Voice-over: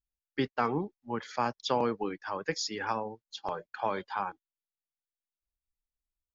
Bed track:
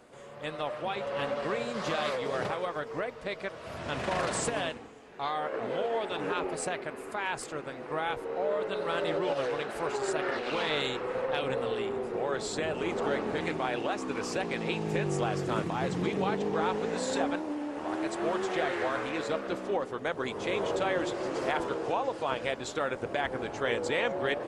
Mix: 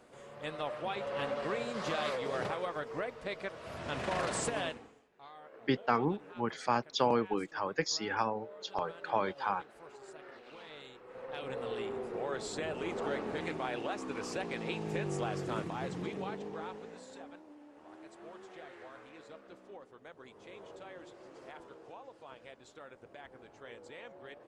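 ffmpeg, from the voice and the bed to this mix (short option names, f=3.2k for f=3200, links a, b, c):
-filter_complex "[0:a]adelay=5300,volume=0dB[a];[1:a]volume=11dB,afade=t=out:st=4.69:d=0.4:silence=0.149624,afade=t=in:st=11.05:d=0.74:silence=0.188365,afade=t=out:st=15.48:d=1.6:silence=0.188365[b];[a][b]amix=inputs=2:normalize=0"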